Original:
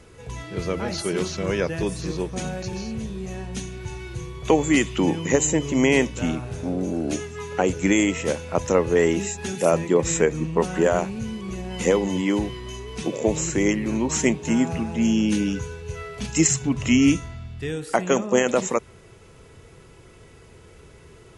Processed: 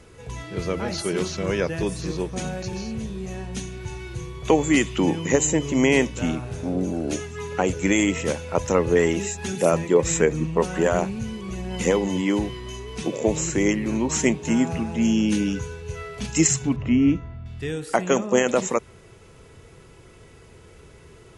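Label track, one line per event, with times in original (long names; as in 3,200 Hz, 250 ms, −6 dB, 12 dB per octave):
6.750000	11.960000	phase shifter 1.4 Hz, delay 2.3 ms, feedback 24%
16.760000	17.460000	head-to-tape spacing loss at 10 kHz 40 dB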